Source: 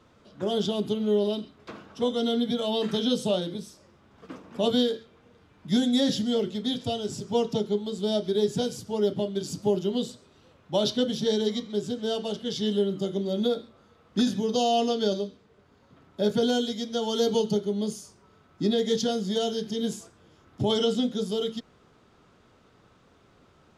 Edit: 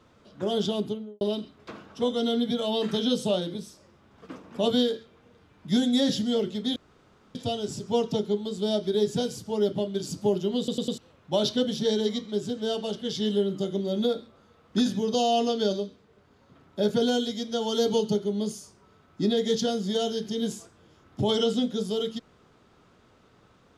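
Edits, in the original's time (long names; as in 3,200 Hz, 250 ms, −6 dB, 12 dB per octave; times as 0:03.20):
0:00.74–0:01.21: fade out and dull
0:06.76: splice in room tone 0.59 s
0:09.99: stutter in place 0.10 s, 4 plays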